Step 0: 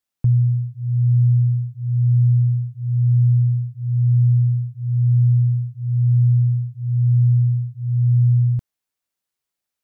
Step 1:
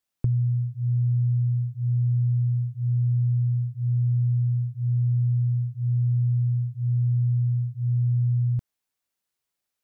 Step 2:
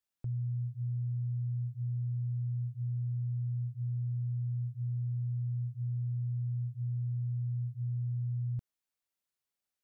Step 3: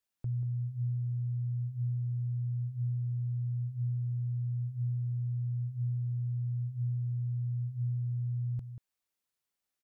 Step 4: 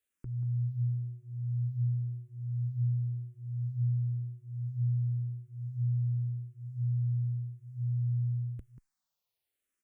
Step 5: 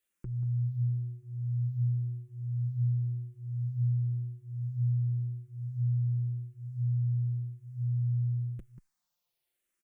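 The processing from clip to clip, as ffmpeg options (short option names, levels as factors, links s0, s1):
-af "acompressor=threshold=0.0891:ratio=6"
-af "alimiter=limit=0.0668:level=0:latency=1,volume=0.447"
-filter_complex "[0:a]asplit=2[s0][s1];[s1]adelay=186.6,volume=0.282,highshelf=f=4000:g=-4.2[s2];[s0][s2]amix=inputs=2:normalize=0,volume=1.19"
-filter_complex "[0:a]asplit=2[s0][s1];[s1]afreqshift=-0.94[s2];[s0][s2]amix=inputs=2:normalize=1,volume=1.5"
-af "aecho=1:1:5.7:0.6,volume=1.19"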